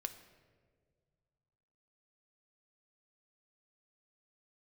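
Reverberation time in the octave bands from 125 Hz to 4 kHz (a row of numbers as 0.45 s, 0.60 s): 2.9 s, 2.2 s, 2.1 s, 1.4 s, 1.2 s, 0.95 s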